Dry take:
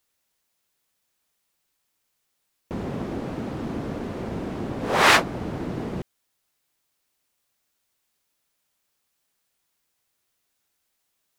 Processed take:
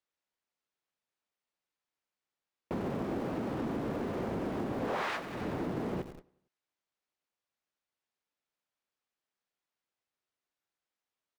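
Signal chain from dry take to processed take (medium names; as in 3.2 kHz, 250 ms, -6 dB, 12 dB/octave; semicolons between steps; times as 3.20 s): low-pass 7.2 kHz; bass shelf 160 Hz -9 dB; on a send: feedback delay 92 ms, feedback 55%, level -17 dB; on the sum: compression 16:1, threshold -31 dBFS, peak gain reduction 19.5 dB; treble shelf 3.3 kHz -9.5 dB; in parallel at -10.5 dB: Schmitt trigger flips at -48 dBFS; on the sum: gate -50 dBFS, range -10 dB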